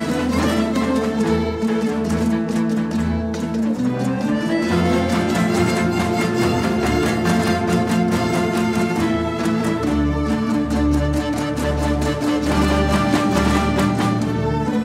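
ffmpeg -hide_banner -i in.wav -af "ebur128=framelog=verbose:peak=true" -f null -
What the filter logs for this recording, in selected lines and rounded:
Integrated loudness:
  I:         -19.1 LUFS
  Threshold: -29.1 LUFS
Loudness range:
  LRA:         1.9 LU
  Threshold: -39.2 LUFS
  LRA low:   -20.2 LUFS
  LRA high:  -18.4 LUFS
True peak:
  Peak:       -5.0 dBFS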